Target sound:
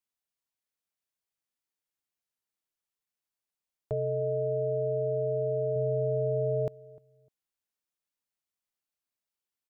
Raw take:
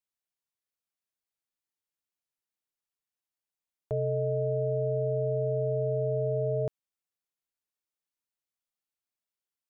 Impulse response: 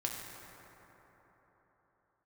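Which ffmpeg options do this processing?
-filter_complex "[0:a]asettb=1/sr,asplit=3[a][b][c];[a]atrim=end=3.934[d];[b]atrim=start=3.93:end=5.76,asetpts=PTS-STARTPTS,afade=t=in:d=0.004:c=qsin,afade=t=out:st=1.826:d=0.004:c=qsin,lowshelf=f=120:g=-7.5[e];[c]atrim=start=5.756[f];[d][e]acrossfade=d=0.004:c1=hsin:c2=qsin[g];[g][f]acrossfade=d=0.004:c1=qsin:c2=hsin,asplit=2[h][i];[i]adelay=302,lowpass=f=920:p=1,volume=-21dB,asplit=2[j][k];[k]adelay=302,lowpass=f=920:p=1,volume=0.24[l];[h][j][l]amix=inputs=3:normalize=0"

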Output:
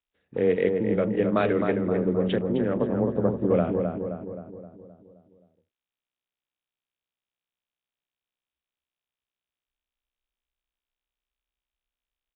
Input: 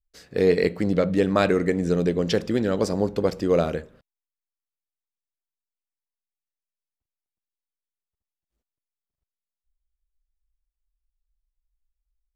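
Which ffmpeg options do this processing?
-filter_complex "[0:a]afwtdn=0.0178,asettb=1/sr,asplit=3[a][b][c];[a]atrim=end=2.874[d];[b]atrim=start=2.87:end=3.65,asetpts=PTS-STARTPTS,afade=t=in:d=0.004:c=qsin,afade=t=out:st=0.776:d=0.004:c=qsin,adynamicequalizer=threshold=0.0112:dfrequency=140:dqfactor=1.2:tfrequency=140:tqfactor=1.2:attack=5:release=100:ratio=0.375:range=3:mode=boostabove:tftype=bell[e];[c]atrim=start=3.646[f];[d][e]acrossfade=d=0.004:c1=hsin:c2=qsin[g];[g][f]acrossfade=d=0.004:c1=qsin:c2=hsin,afreqshift=13,asplit=2[h][i];[i]adelay=262,lowpass=f=1.8k:p=1,volume=-4.5dB,asplit=2[j][k];[k]adelay=262,lowpass=f=1.8k:p=1,volume=0.55,asplit=2[l][m];[m]adelay=262,lowpass=f=1.8k:p=1,volume=0.55,asplit=2[n][o];[o]adelay=262,lowpass=f=1.8k:p=1,volume=0.55,asplit=2[p][q];[q]adelay=262,lowpass=f=1.8k:p=1,volume=0.55,asplit=2[r][s];[s]adelay=262,lowpass=f=1.8k:p=1,volume=0.55,asplit=2[t][u];[u]adelay=262,lowpass=f=1.8k:p=1,volume=0.55[v];[j][l][n][p][r][t][v]amix=inputs=7:normalize=0[w];[h][w]amix=inputs=2:normalize=0,volume=-3.5dB" -ar 8000 -c:a nellymoser

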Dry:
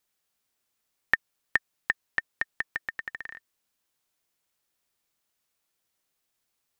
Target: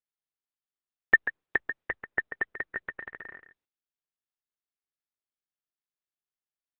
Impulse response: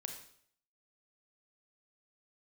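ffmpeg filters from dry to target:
-af "agate=range=-31dB:threshold=-59dB:ratio=16:detection=peak,lowpass=1.7k,equalizer=f=380:t=o:w=0.84:g=10,aecho=1:1:139:0.299" -ar 48000 -c:a libopus -b:a 8k

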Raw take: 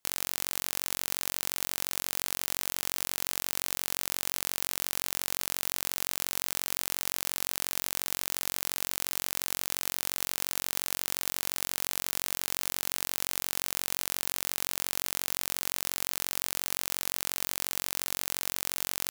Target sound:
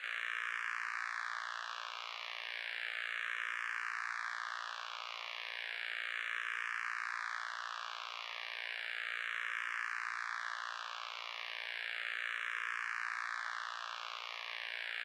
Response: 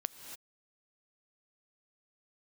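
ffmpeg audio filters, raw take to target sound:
-filter_complex "[0:a]aeval=exprs='val(0)+0.5*0.0282*sgn(val(0))':c=same,lowpass=2k,aemphasis=mode=reproduction:type=75fm,asetrate=56007,aresample=44100,highpass=f=1.5k:t=q:w=1.9,asplit=2[a][b];[b]adelay=19,volume=-4dB[c];[a][c]amix=inputs=2:normalize=0,asplit=2[d][e];[e]afreqshift=-0.33[f];[d][f]amix=inputs=2:normalize=1,volume=1.5dB"

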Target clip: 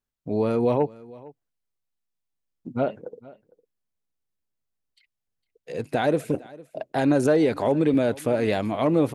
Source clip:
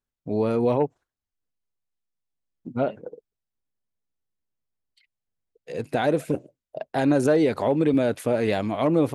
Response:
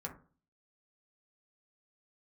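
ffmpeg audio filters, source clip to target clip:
-af "aecho=1:1:456:0.0841"

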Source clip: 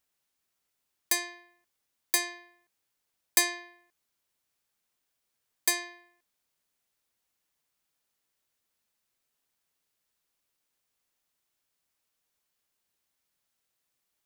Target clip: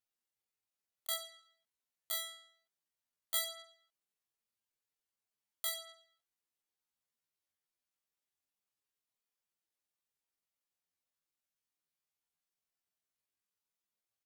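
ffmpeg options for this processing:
-af "flanger=delay=16.5:depth=7.5:speed=0.21,asetrate=83250,aresample=44100,atempo=0.529732,volume=-6dB"

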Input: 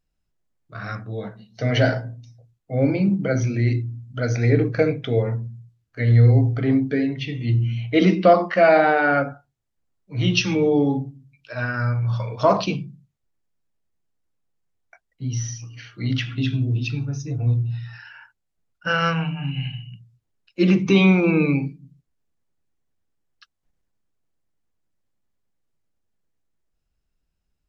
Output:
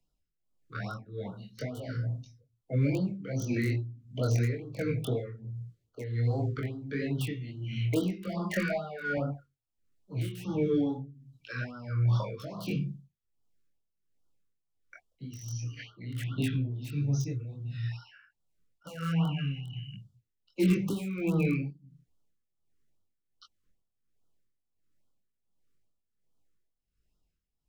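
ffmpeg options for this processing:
-filter_complex "[0:a]asettb=1/sr,asplit=3[a][b][c];[a]atrim=end=5.444[d];[b]atrim=start=5.44:end=6.16,asetpts=PTS-STARTPTS,afade=t=in:d=0.004:c=qsin,afade=t=out:st=0.716:d=0.004:c=qsin,equalizer=f=440:w=1.8:g=10[e];[c]atrim=start=6.156[f];[d][e]acrossfade=d=0.004:c1=hsin:c2=qsin[g];[g][f]acrossfade=d=0.004:c1=qsin:c2=hsin,asettb=1/sr,asplit=3[h][i][j];[h]atrim=end=8.264[k];[i]atrim=start=8.26:end=9.17,asetpts=PTS-STARTPTS,afade=t=in:d=0.004:c=qsin,afade=t=out:st=0.906:d=0.004:c=qsin,aecho=1:1:4.9:0.99,atrim=end_sample=40131[l];[j]atrim=start=9.166[m];[k][l]acrossfade=d=0.004:c1=hsin:c2=qsin[n];[n][m]acrossfade=d=0.004:c1=qsin:c2=hsin,asettb=1/sr,asplit=3[o][p][q];[o]atrim=end=15.784[r];[p]atrim=start=15.78:end=16.71,asetpts=PTS-STARTPTS,afade=t=in:d=0.004:c=qsin,afade=t=out:st=0.926:d=0.004:c=qsin,lowpass=3.3k[s];[q]atrim=start=16.706[t];[r][s]acrossfade=d=0.004:c1=hsin:c2=qsin[u];[u][t]acrossfade=d=0.004:c1=qsin:c2=hsin,acrossover=split=160|330|1800[v][w][x][y];[v]acompressor=threshold=-26dB:ratio=4[z];[w]acompressor=threshold=-33dB:ratio=4[aa];[x]acompressor=threshold=-31dB:ratio=4[ab];[y]acompressor=threshold=-37dB:ratio=4[ac];[z][aa][ab][ac]amix=inputs=4:normalize=0,acrossover=split=100|2000[ad][ae][af];[af]aeval=exprs='(mod(37.6*val(0)+1,2)-1)/37.6':c=same[ag];[ad][ae][ag]amix=inputs=3:normalize=0,flanger=delay=20:depth=5:speed=1.7,asplit=2[ah][ai];[ai]asoftclip=type=tanh:threshold=-29dB,volume=-6.5dB[aj];[ah][aj]amix=inputs=2:normalize=0,tremolo=f=1.4:d=0.78,afftfilt=real='re*(1-between(b*sr/1024,710*pow(2100/710,0.5+0.5*sin(2*PI*2.4*pts/sr))/1.41,710*pow(2100/710,0.5+0.5*sin(2*PI*2.4*pts/sr))*1.41))':imag='im*(1-between(b*sr/1024,710*pow(2100/710,0.5+0.5*sin(2*PI*2.4*pts/sr))/1.41,710*pow(2100/710,0.5+0.5*sin(2*PI*2.4*pts/sr))*1.41))':win_size=1024:overlap=0.75"

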